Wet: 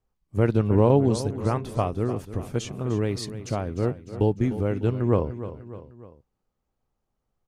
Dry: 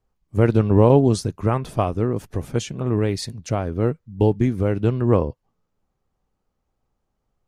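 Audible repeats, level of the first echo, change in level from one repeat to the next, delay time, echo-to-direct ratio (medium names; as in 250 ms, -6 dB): 3, -13.0 dB, -5.5 dB, 301 ms, -11.5 dB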